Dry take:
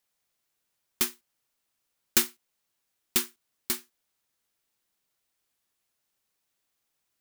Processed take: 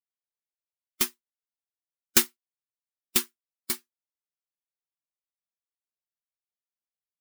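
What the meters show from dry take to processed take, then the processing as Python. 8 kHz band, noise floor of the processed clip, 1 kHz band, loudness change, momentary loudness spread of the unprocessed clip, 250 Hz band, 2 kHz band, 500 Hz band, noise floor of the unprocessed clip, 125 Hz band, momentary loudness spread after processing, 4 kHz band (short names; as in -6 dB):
+1.5 dB, under -85 dBFS, +1.5 dB, +1.5 dB, 10 LU, +1.5 dB, +2.0 dB, +1.5 dB, -80 dBFS, +2.0 dB, 13 LU, +1.5 dB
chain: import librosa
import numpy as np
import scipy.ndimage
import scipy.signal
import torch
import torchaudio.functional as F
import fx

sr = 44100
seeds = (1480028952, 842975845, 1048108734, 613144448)

y = fx.bin_expand(x, sr, power=1.5)
y = y * librosa.db_to_amplitude(3.5)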